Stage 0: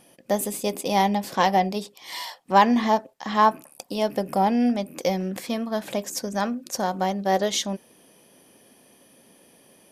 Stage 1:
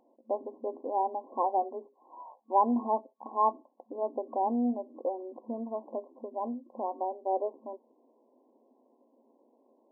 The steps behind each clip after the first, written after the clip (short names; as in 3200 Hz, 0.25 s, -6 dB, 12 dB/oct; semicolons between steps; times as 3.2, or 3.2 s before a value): FFT band-pass 220–1100 Hz; gain -7.5 dB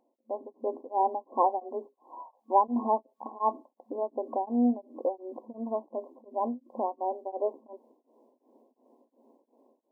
AGC gain up to 10 dB; beating tremolo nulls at 2.8 Hz; gain -5 dB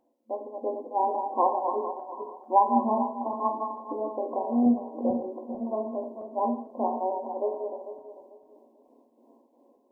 regenerating reverse delay 0.222 s, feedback 50%, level -6 dB; non-linear reverb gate 0.21 s falling, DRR 2.5 dB